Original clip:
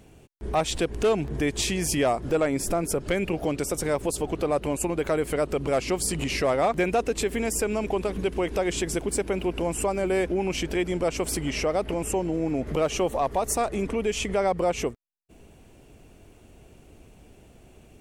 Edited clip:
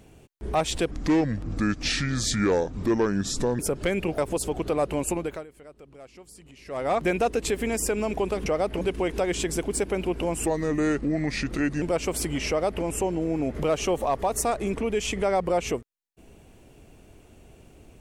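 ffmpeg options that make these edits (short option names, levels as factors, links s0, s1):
-filter_complex "[0:a]asplit=10[s0][s1][s2][s3][s4][s5][s6][s7][s8][s9];[s0]atrim=end=0.914[s10];[s1]atrim=start=0.91:end=2.84,asetpts=PTS-STARTPTS,asetrate=31752,aresample=44100,atrim=end_sample=118212,asetpts=PTS-STARTPTS[s11];[s2]atrim=start=2.836:end=3.432[s12];[s3]atrim=start=3.908:end=5.19,asetpts=PTS-STARTPTS,afade=t=out:st=0.952:d=0.33:silence=0.0794328[s13];[s4]atrim=start=5.19:end=6.38,asetpts=PTS-STARTPTS,volume=0.0794[s14];[s5]atrim=start=6.38:end=8.192,asetpts=PTS-STARTPTS,afade=t=in:d=0.33:silence=0.0794328[s15];[s6]atrim=start=11.608:end=11.962[s16];[s7]atrim=start=8.188:end=9.844[s17];[s8]atrim=start=9.84:end=10.94,asetpts=PTS-STARTPTS,asetrate=35721,aresample=44100[s18];[s9]atrim=start=10.936[s19];[s10][s11]acrossfade=d=0.004:c1=hsin:c2=hsin[s20];[s20][s12]acrossfade=d=0.004:c1=hsin:c2=hsin[s21];[s13][s14][s15]concat=n=3:v=0:a=1[s22];[s21][s22]acrossfade=d=0.004:c1=hsin:c2=hsin[s23];[s23][s16]acrossfade=d=0.004:c1=hsin:c2=hsin[s24];[s24][s17]acrossfade=d=0.004:c1=hsin:c2=hsin[s25];[s25][s18]acrossfade=d=0.004:c1=hsin:c2=hsin[s26];[s26][s19]acrossfade=d=0.004:c1=hsin:c2=hsin"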